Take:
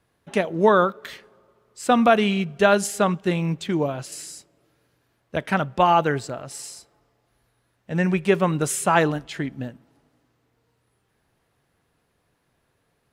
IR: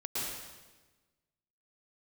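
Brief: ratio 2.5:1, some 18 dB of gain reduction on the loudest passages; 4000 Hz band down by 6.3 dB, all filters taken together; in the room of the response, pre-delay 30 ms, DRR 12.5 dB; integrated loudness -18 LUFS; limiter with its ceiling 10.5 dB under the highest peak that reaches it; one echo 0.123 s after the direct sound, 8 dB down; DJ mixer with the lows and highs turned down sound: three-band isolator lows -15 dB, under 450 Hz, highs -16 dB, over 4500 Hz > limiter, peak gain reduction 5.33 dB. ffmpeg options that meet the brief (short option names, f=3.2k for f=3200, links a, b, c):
-filter_complex "[0:a]equalizer=f=4k:t=o:g=-6.5,acompressor=threshold=-41dB:ratio=2.5,alimiter=level_in=7.5dB:limit=-24dB:level=0:latency=1,volume=-7.5dB,aecho=1:1:123:0.398,asplit=2[a][b];[1:a]atrim=start_sample=2205,adelay=30[c];[b][c]afir=irnorm=-1:irlink=0,volume=-17dB[d];[a][d]amix=inputs=2:normalize=0,acrossover=split=450 4500:gain=0.178 1 0.158[e][f][g];[e][f][g]amix=inputs=3:normalize=0,volume=29.5dB,alimiter=limit=-6.5dB:level=0:latency=1"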